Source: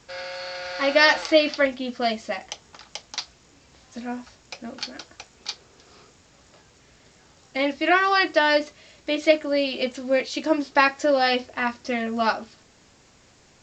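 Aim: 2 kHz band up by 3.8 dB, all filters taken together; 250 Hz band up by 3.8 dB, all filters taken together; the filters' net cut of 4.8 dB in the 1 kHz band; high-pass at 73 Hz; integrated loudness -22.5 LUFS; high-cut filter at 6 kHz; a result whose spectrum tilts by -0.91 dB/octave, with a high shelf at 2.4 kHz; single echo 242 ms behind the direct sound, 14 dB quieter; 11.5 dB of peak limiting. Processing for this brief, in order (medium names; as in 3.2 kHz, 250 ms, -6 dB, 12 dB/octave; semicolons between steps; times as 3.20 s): high-pass 73 Hz; low-pass 6 kHz; peaking EQ 250 Hz +5 dB; peaking EQ 1 kHz -8.5 dB; peaking EQ 2 kHz +8.5 dB; treble shelf 2.4 kHz -3.5 dB; peak limiter -13.5 dBFS; delay 242 ms -14 dB; trim +2.5 dB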